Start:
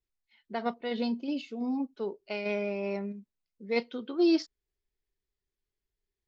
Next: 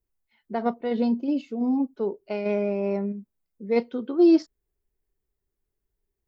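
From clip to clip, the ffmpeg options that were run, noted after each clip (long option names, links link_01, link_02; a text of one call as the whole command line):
ffmpeg -i in.wav -af "equalizer=frequency=3700:width_type=o:width=2.6:gain=-13,volume=8dB" out.wav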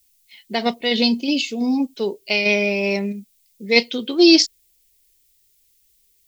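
ffmpeg -i in.wav -af "aexciter=amount=13:drive=4.2:freq=2100,volume=4dB" out.wav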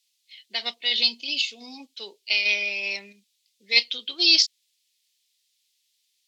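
ffmpeg -i in.wav -af "bandpass=frequency=3700:width_type=q:width=1.6:csg=0,volume=2dB" out.wav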